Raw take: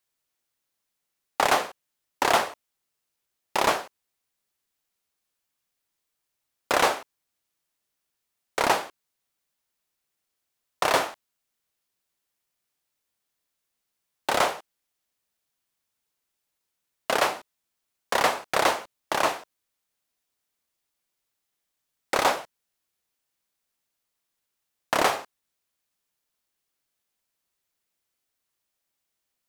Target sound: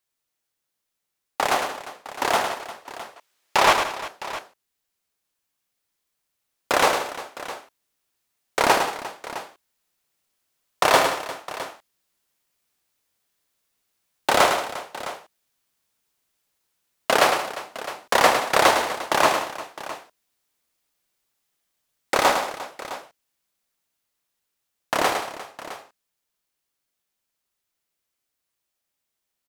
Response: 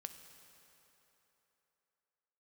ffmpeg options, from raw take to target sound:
-filter_complex "[0:a]asettb=1/sr,asplit=3[s0][s1][s2];[s0]atrim=end=2.504[s3];[s1]atrim=start=2.5:end=3.73,asetpts=PTS-STARTPTS,afade=t=in:d=0.004:c=qsin,afade=t=out:st=1.226:d=0.004:c=qsin,asplit=2[s4][s5];[s5]highpass=f=720:p=1,volume=10,asoftclip=type=tanh:threshold=0.447[s6];[s4][s6]amix=inputs=2:normalize=0,lowpass=f=4800:p=1,volume=0.501[s7];[s2]atrim=start=3.726[s8];[s3][s7]acrossfade=d=0.004:c1=hsin:c2=qsin[s9];[s9][s8]acrossfade=d=0.004:c1=qsin:c2=hsin,dynaudnorm=f=470:g=31:m=3.76,aecho=1:1:106|178|351|660:0.447|0.188|0.158|0.178,volume=0.891"

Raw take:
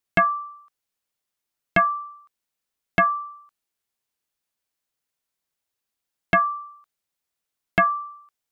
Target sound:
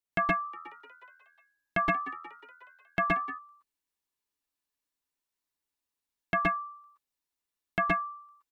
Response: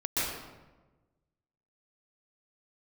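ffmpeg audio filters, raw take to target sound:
-filter_complex "[0:a]asplit=3[s0][s1][s2];[s0]afade=t=out:st=0.43:d=0.02[s3];[s1]asplit=7[s4][s5][s6][s7][s8][s9][s10];[s5]adelay=181,afreqshift=82,volume=0.126[s11];[s6]adelay=362,afreqshift=164,volume=0.0767[s12];[s7]adelay=543,afreqshift=246,volume=0.0468[s13];[s8]adelay=724,afreqshift=328,volume=0.0285[s14];[s9]adelay=905,afreqshift=410,volume=0.0174[s15];[s10]adelay=1086,afreqshift=492,volume=0.0106[s16];[s4][s11][s12][s13][s14][s15][s16]amix=inputs=7:normalize=0,afade=t=in:st=0.43:d=0.02,afade=t=out:st=3.25:d=0.02[s17];[s2]afade=t=in:st=3.25:d=0.02[s18];[s3][s17][s18]amix=inputs=3:normalize=0[s19];[1:a]atrim=start_sample=2205,afade=t=out:st=0.18:d=0.01,atrim=end_sample=8379[s20];[s19][s20]afir=irnorm=-1:irlink=0,volume=0.376"

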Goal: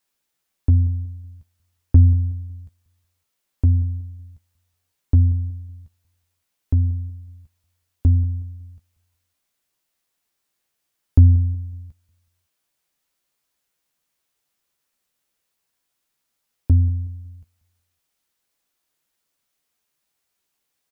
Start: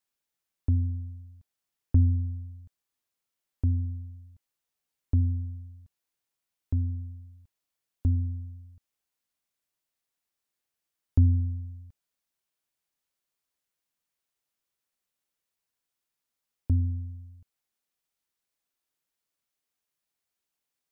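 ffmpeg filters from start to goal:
-filter_complex "[0:a]asplit=2[s0][s1];[s1]adelay=14,volume=0.398[s2];[s0][s2]amix=inputs=2:normalize=0,asplit=2[s3][s4];[s4]aecho=0:1:185|370|555:0.106|0.0328|0.0102[s5];[s3][s5]amix=inputs=2:normalize=0,volume=2.66"

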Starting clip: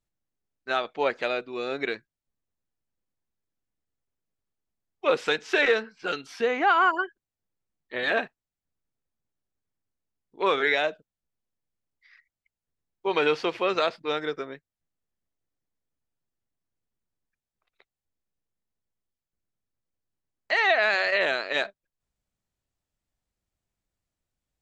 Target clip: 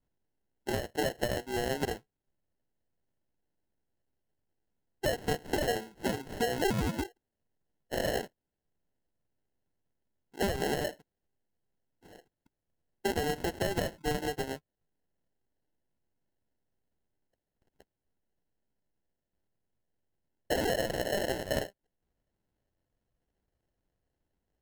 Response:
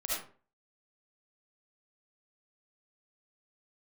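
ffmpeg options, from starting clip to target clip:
-af "acompressor=threshold=0.0282:ratio=6,acrusher=samples=37:mix=1:aa=0.000001,volume=1.41"

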